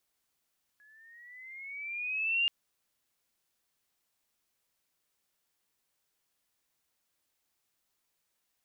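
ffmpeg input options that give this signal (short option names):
-f lavfi -i "aevalsrc='pow(10,(-24+34*(t/1.68-1))/20)*sin(2*PI*1680*1.68/(9*log(2)/12)*(exp(9*log(2)/12*t/1.68)-1))':d=1.68:s=44100"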